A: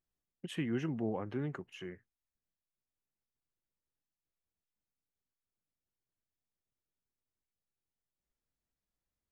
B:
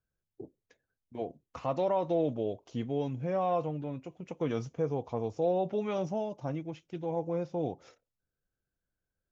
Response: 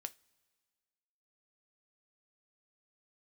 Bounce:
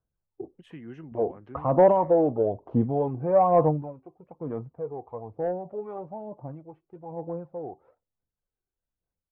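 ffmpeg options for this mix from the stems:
-filter_complex "[0:a]adelay=150,volume=-15.5dB[link_01];[1:a]aphaser=in_gain=1:out_gain=1:delay=2.7:decay=0.53:speed=1.1:type=sinusoidal,lowpass=frequency=970:width_type=q:width=1.8,asoftclip=type=tanh:threshold=-12dB,volume=-2.5dB,afade=type=out:start_time=3.69:duration=0.25:silence=0.237137[link_02];[link_01][link_02]amix=inputs=2:normalize=0,lowpass=frequency=2100:poles=1,dynaudnorm=framelen=180:gausssize=5:maxgain=8.5dB"

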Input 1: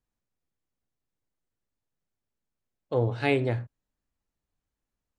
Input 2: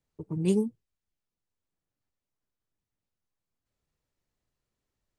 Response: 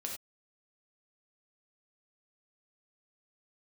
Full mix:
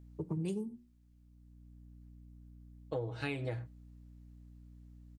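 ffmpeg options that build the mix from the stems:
-filter_complex "[0:a]highshelf=frequency=7200:gain=8,aecho=1:1:6.3:0.69,aeval=exprs='val(0)+0.00501*(sin(2*PI*60*n/s)+sin(2*PI*2*60*n/s)/2+sin(2*PI*3*60*n/s)/3+sin(2*PI*4*60*n/s)/4+sin(2*PI*5*60*n/s)/5)':channel_layout=same,volume=-7.5dB,asplit=2[link_01][link_02];[link_02]volume=-23dB[link_03];[1:a]bandreject=frequency=60:width_type=h:width=6,bandreject=frequency=120:width_type=h:width=6,bandreject=frequency=180:width_type=h:width=6,bandreject=frequency=240:width_type=h:width=6,bandreject=frequency=300:width_type=h:width=6,bandreject=frequency=360:width_type=h:width=6,acrossover=split=120[link_04][link_05];[link_05]acompressor=threshold=-29dB:ratio=6[link_06];[link_04][link_06]amix=inputs=2:normalize=0,volume=2.5dB,asplit=3[link_07][link_08][link_09];[link_08]volume=-15.5dB[link_10];[link_09]apad=whole_len=228732[link_11];[link_01][link_11]sidechaincompress=threshold=-43dB:ratio=8:attack=16:release=910[link_12];[2:a]atrim=start_sample=2205[link_13];[link_03][link_10]amix=inputs=2:normalize=0[link_14];[link_14][link_13]afir=irnorm=-1:irlink=0[link_15];[link_12][link_07][link_15]amix=inputs=3:normalize=0,acompressor=threshold=-33dB:ratio=10"

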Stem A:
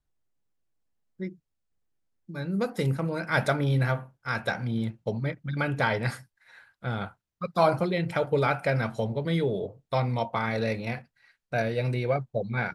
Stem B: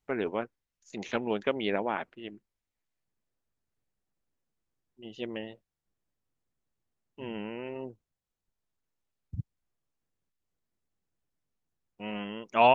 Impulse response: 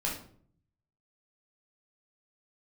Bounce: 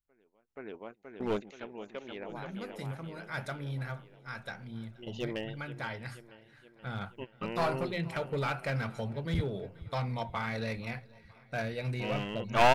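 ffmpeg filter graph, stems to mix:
-filter_complex "[0:a]equalizer=frequency=440:width_type=o:width=1.7:gain=-5.5,bandreject=frequency=60:width_type=h:width=6,bandreject=frequency=120:width_type=h:width=6,bandreject=frequency=180:width_type=h:width=6,volume=-4dB,afade=type=in:start_time=6.48:duration=0.53:silence=0.446684,asplit=3[link_01][link_02][link_03];[link_02]volume=-24dB[link_04];[1:a]asubboost=boost=6.5:cutoff=65,asoftclip=type=tanh:threshold=-11.5dB,volume=2.5dB,asplit=2[link_05][link_06];[link_06]volume=-15dB[link_07];[link_03]apad=whole_len=562196[link_08];[link_05][link_08]sidechaingate=range=-41dB:threshold=-59dB:ratio=16:detection=peak[link_09];[link_04][link_07]amix=inputs=2:normalize=0,aecho=0:1:477|954|1431|1908|2385|2862|3339|3816|4293:1|0.59|0.348|0.205|0.121|0.0715|0.0422|0.0249|0.0147[link_10];[link_01][link_09][link_10]amix=inputs=3:normalize=0,aeval=exprs='clip(val(0),-1,0.0422)':channel_layout=same"

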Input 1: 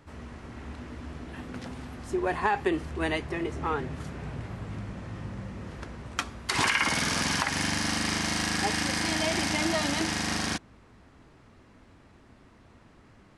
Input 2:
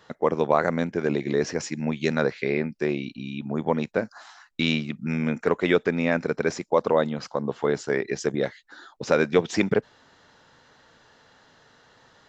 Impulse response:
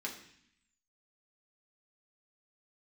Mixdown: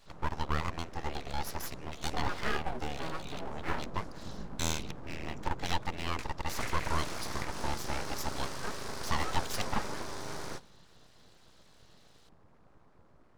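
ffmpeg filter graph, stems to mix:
-filter_complex "[0:a]highshelf=frequency=1600:width_type=q:width=3:gain=-13.5,flanger=delay=16.5:depth=5.9:speed=1.8,volume=2.5dB,asplit=2[link_01][link_02];[link_02]volume=-15.5dB[link_03];[1:a]highpass=250,volume=-2.5dB[link_04];[2:a]atrim=start_sample=2205[link_05];[link_03][link_05]afir=irnorm=-1:irlink=0[link_06];[link_01][link_04][link_06]amix=inputs=3:normalize=0,equalizer=frequency=250:width_type=o:width=1:gain=-11,equalizer=frequency=1000:width_type=o:width=1:gain=-11,equalizer=frequency=2000:width_type=o:width=1:gain=-6,equalizer=frequency=4000:width_type=o:width=1:gain=4,aeval=exprs='abs(val(0))':channel_layout=same"

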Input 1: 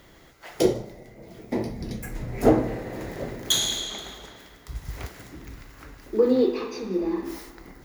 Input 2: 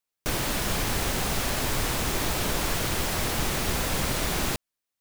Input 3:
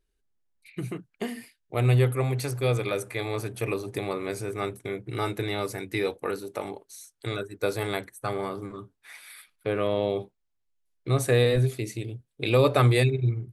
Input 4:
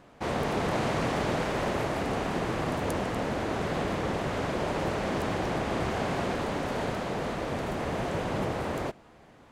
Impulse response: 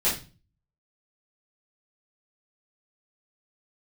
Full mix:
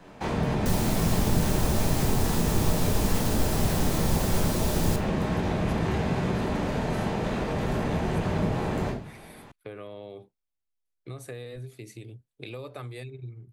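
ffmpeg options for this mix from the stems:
-filter_complex "[1:a]equalizer=frequency=1900:width_type=o:width=1.3:gain=-12,adelay=400,volume=0.5dB,asplit=2[link_01][link_02];[link_02]volume=-18dB[link_03];[2:a]acompressor=threshold=-30dB:ratio=6,volume=-7dB[link_04];[3:a]acrossover=split=250[link_05][link_06];[link_06]acompressor=threshold=-33dB:ratio=6[link_07];[link_05][link_07]amix=inputs=2:normalize=0,volume=-1.5dB,asplit=2[link_08][link_09];[link_09]volume=-5.5dB[link_10];[4:a]atrim=start_sample=2205[link_11];[link_03][link_10]amix=inputs=2:normalize=0[link_12];[link_12][link_11]afir=irnorm=-1:irlink=0[link_13];[link_01][link_04][link_08][link_13]amix=inputs=4:normalize=0,acrossover=split=210[link_14][link_15];[link_15]acompressor=threshold=-28dB:ratio=3[link_16];[link_14][link_16]amix=inputs=2:normalize=0"

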